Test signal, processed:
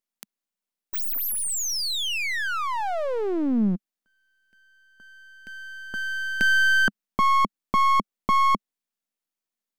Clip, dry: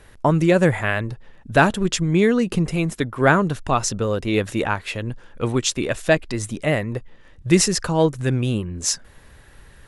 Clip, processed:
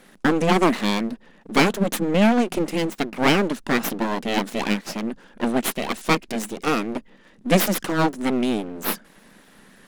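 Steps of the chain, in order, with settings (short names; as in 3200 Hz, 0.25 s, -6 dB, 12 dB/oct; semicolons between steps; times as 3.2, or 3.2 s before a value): full-wave rectifier; resonant low shelf 140 Hz -13 dB, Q 3; gain +1 dB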